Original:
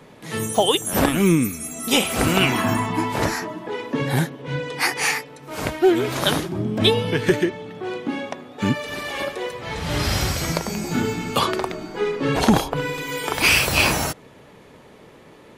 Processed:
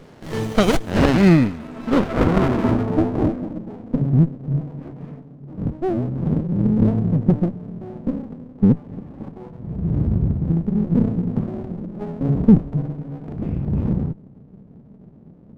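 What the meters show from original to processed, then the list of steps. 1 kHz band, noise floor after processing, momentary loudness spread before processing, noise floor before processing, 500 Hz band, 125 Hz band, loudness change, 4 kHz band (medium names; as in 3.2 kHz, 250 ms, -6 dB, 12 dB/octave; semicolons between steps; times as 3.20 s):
-6.0 dB, -45 dBFS, 11 LU, -47 dBFS, -2.5 dB, +6.5 dB, +1.0 dB, under -10 dB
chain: low-pass sweep 5.3 kHz -> 200 Hz, 0.33–3.74 s; loudness maximiser +4.5 dB; sliding maximum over 33 samples; trim -1.5 dB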